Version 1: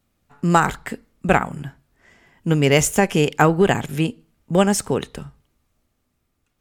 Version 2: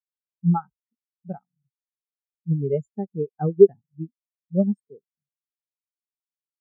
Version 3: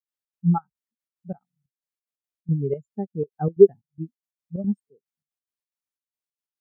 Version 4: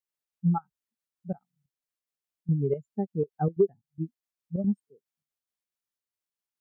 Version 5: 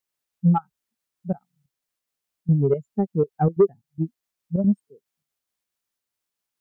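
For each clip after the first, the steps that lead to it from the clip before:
spectral expander 4:1
step gate ".xx.xxx..xx.x" 181 bpm -12 dB
compressor 4:1, threshold -21 dBFS, peak gain reduction 13 dB
soft clip -15 dBFS, distortion -21 dB; gain +7.5 dB

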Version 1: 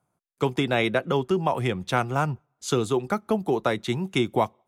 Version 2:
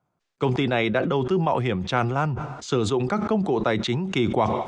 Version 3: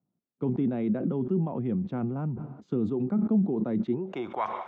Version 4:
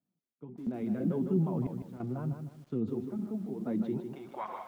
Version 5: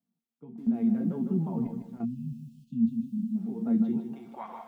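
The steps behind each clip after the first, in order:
Bessel low-pass 4800 Hz, order 8; sustainer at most 37 dB/s
band-pass sweep 220 Hz -> 1500 Hz, 3.84–4.42; gain +2 dB
flange 1.6 Hz, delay 3 ms, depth 6.2 ms, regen +27%; random-step tremolo 3 Hz, depth 85%; lo-fi delay 0.154 s, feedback 35%, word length 10-bit, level -7.5 dB
resonator 230 Hz, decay 0.27 s, harmonics all, mix 80%; spectral delete 2.05–3.36, 270–2500 Hz; small resonant body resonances 210/800 Hz, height 8 dB, ringing for 30 ms; gain +6.5 dB

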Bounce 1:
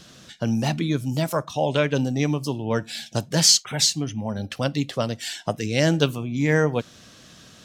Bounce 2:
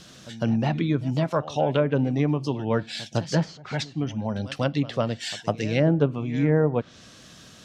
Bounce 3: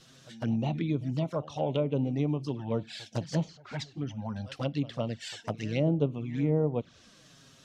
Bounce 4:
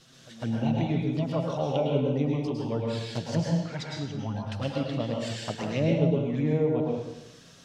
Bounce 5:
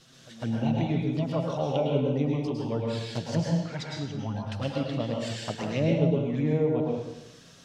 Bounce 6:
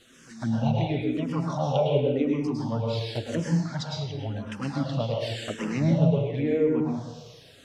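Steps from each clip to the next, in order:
pre-echo 0.155 s -18 dB; treble ducked by the level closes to 870 Hz, closed at -15.5 dBFS
envelope flanger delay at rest 9.1 ms, full sweep at -20 dBFS; gain -5.5 dB
plate-style reverb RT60 0.94 s, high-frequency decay 0.85×, pre-delay 95 ms, DRR -1.5 dB
nothing audible
endless phaser -0.92 Hz; gain +4.5 dB

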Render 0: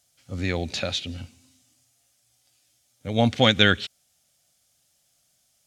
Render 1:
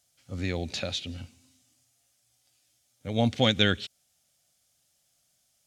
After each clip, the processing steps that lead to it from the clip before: dynamic EQ 1400 Hz, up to -5 dB, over -34 dBFS, Q 0.74; gain -3.5 dB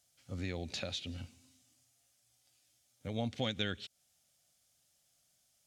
compressor 2:1, threshold -36 dBFS, peak gain reduction 10.5 dB; gain -3 dB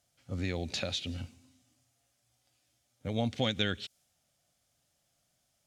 mismatched tape noise reduction decoder only; gain +5 dB

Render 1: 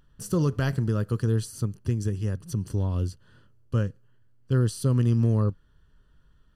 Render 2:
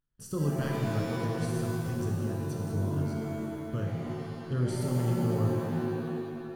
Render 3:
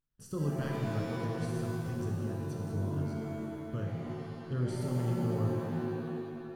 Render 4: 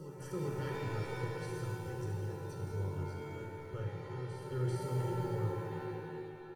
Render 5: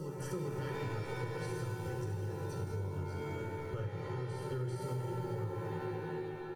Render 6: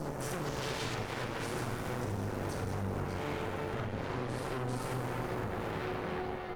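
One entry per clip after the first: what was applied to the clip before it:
gate -53 dBFS, range -17 dB; shimmer reverb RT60 2.2 s, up +7 st, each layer -2 dB, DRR 0 dB; gain -9 dB
high shelf 6500 Hz -5.5 dB; gain -3.5 dB
comb 2.2 ms, depth 92%; reverse echo 0.394 s -9 dB; on a send at -3 dB: reverb RT60 0.55 s, pre-delay 3 ms; on the sum: gain -6 dB
compressor, threshold -41 dBFS, peak gain reduction 11 dB; gain +6 dB
spectral gain 0.46–0.95, 2600–7100 Hz +9 dB; added harmonics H 8 -8 dB, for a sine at -26 dBFS; flutter echo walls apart 7 m, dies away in 0.23 s; gain -2 dB

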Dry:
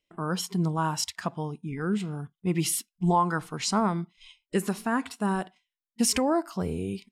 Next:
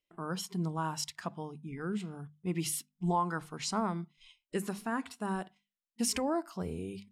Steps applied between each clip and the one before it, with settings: notches 50/100/150/200/250 Hz; gain -7 dB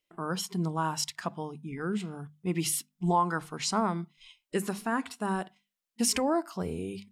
low shelf 140 Hz -5 dB; gain +5 dB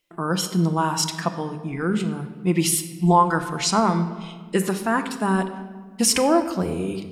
shoebox room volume 1600 m³, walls mixed, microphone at 0.77 m; gain +8 dB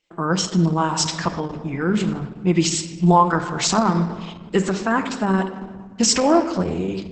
gain +3 dB; Opus 10 kbps 48000 Hz

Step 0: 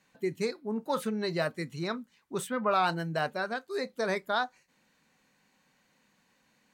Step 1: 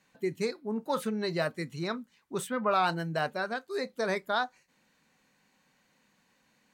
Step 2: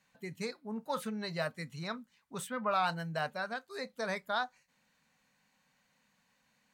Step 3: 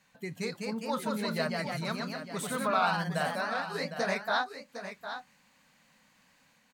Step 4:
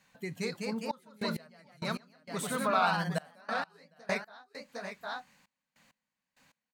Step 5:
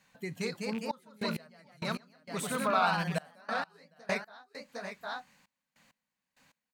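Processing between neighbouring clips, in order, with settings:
nothing audible
bell 350 Hz -13.5 dB 0.52 oct; gain -3.5 dB
in parallel at -1 dB: compressor, threshold -42 dBFS, peak gain reduction 15 dB; on the sum: echoes that change speed 0.225 s, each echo +1 st, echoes 2; echo 0.757 s -10 dB
step gate "xxxxxx..x...x.." 99 bpm -24 dB
rattling part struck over -36 dBFS, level -32 dBFS

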